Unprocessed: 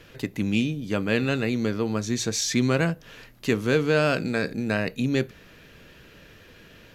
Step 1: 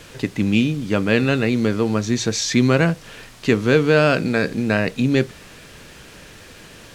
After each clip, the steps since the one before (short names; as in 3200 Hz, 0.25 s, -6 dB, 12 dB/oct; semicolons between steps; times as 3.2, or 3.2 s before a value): requantised 8-bit, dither triangular; air absorption 56 m; gain +6.5 dB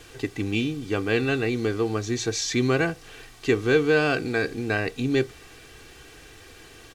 comb 2.6 ms, depth 67%; gain -6.5 dB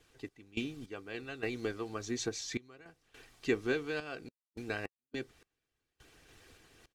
random-step tremolo, depth 100%; harmonic-percussive split harmonic -10 dB; gain -6.5 dB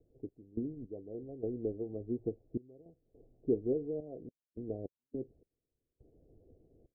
steep low-pass 620 Hz 48 dB/oct; gain +1 dB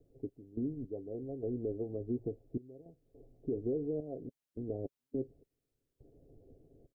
comb 7.3 ms, depth 31%; limiter -29.5 dBFS, peak gain reduction 11 dB; gain +2.5 dB